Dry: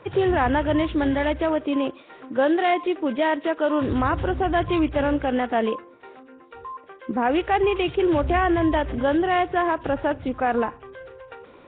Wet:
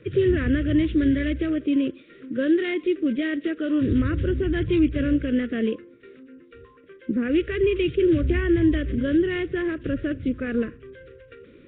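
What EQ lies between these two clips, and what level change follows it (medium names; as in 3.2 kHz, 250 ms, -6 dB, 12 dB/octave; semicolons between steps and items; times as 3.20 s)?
Butterworth band-stop 850 Hz, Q 0.61; treble shelf 2.2 kHz -10 dB; +3.5 dB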